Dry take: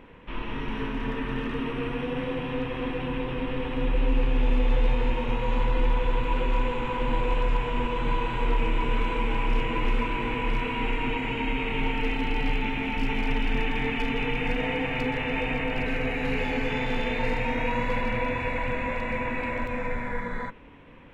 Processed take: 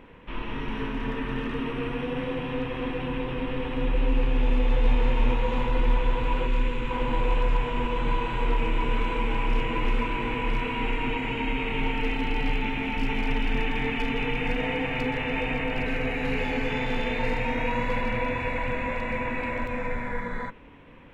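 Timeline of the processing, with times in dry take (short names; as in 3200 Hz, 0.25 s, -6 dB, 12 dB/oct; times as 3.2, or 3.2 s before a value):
4.51–4.99 echo throw 0.34 s, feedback 80%, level -5 dB
6.47–6.91 bell 750 Hz -9.5 dB 1 oct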